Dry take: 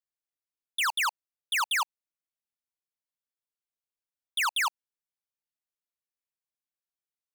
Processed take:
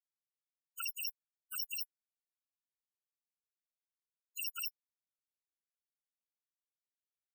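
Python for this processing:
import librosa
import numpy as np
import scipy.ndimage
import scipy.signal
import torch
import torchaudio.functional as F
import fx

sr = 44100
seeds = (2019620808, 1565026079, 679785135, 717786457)

y = fx.bit_reversed(x, sr, seeds[0], block=128)
y = fx.low_shelf(y, sr, hz=370.0, db=-2.5)
y = fx.spec_topn(y, sr, count=16)
y = y * 10.0 ** (-5.5 / 20.0)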